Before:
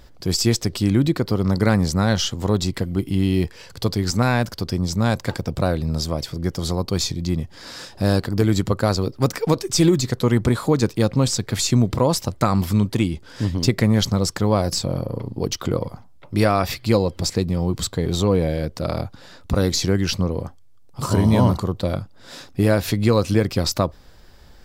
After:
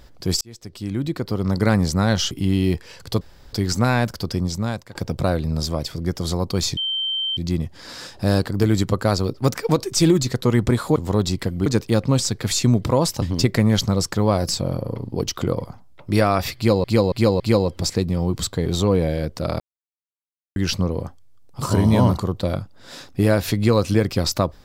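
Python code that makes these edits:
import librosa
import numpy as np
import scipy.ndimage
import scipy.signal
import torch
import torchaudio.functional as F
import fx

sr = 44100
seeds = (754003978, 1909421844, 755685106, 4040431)

y = fx.edit(x, sr, fx.fade_in_span(start_s=0.41, length_s=1.32),
    fx.move(start_s=2.31, length_s=0.7, to_s=10.74),
    fx.insert_room_tone(at_s=3.91, length_s=0.32),
    fx.fade_out_to(start_s=4.78, length_s=0.55, floor_db=-21.5),
    fx.insert_tone(at_s=7.15, length_s=0.6, hz=3120.0, db=-21.0),
    fx.cut(start_s=12.3, length_s=1.16),
    fx.repeat(start_s=16.8, length_s=0.28, count=4),
    fx.silence(start_s=19.0, length_s=0.96), tone=tone)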